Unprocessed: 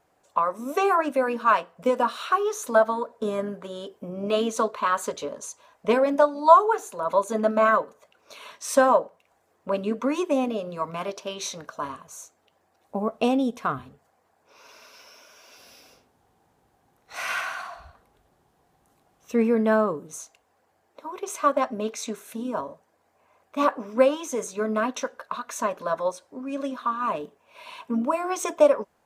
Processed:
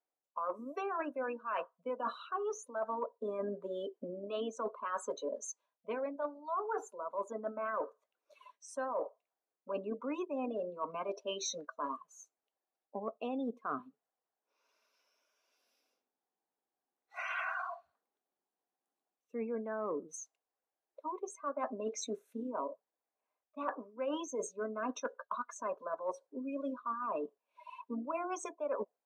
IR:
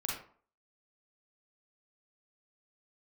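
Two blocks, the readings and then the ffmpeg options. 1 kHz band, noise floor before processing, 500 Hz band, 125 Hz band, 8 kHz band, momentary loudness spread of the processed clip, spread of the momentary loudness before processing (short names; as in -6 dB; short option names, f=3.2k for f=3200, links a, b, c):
-15.0 dB, -68 dBFS, -14.0 dB, -17.0 dB, -10.5 dB, 8 LU, 16 LU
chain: -af "afftdn=nr=26:nf=-33,highpass=f=240:w=0.5412,highpass=f=240:w=1.3066,areverse,acompressor=threshold=-33dB:ratio=16,areverse,volume=-1dB"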